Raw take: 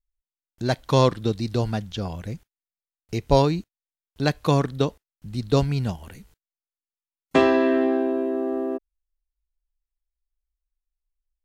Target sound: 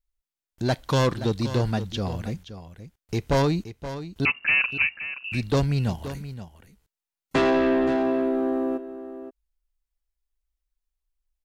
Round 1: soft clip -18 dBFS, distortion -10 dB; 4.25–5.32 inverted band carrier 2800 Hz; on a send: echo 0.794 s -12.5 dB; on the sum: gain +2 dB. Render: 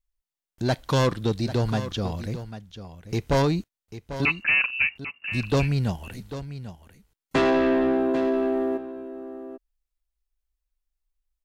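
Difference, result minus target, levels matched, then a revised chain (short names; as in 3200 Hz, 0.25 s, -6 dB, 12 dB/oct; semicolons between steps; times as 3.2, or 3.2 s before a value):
echo 0.27 s late
soft clip -18 dBFS, distortion -10 dB; 4.25–5.32 inverted band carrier 2800 Hz; on a send: echo 0.524 s -12.5 dB; on the sum: gain +2 dB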